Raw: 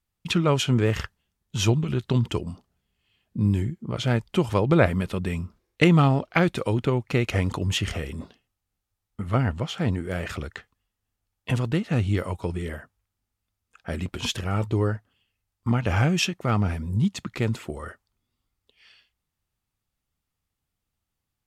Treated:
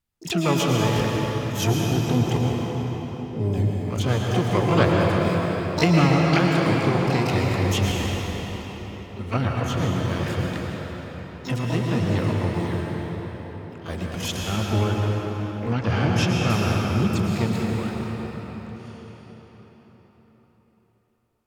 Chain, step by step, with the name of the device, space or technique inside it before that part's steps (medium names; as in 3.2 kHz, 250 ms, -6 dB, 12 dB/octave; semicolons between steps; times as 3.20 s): shimmer-style reverb (harmony voices +12 st -6 dB; reverberation RT60 5.1 s, pre-delay 100 ms, DRR -2 dB); 15.73–16.50 s: distance through air 58 m; trim -2.5 dB